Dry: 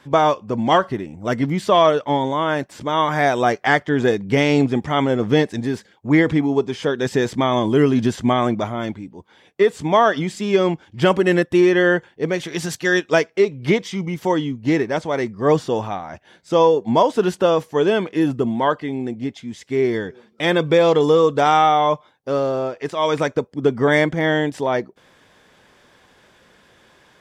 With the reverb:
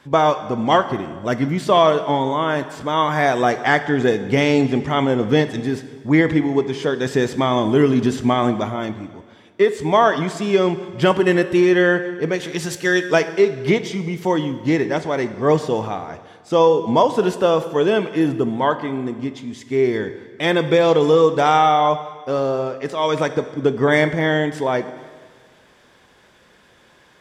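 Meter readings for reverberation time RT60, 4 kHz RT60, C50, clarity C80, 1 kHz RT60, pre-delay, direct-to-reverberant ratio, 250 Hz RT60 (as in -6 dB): 1.6 s, 1.5 s, 12.0 dB, 13.5 dB, 1.6 s, 5 ms, 10.5 dB, 1.7 s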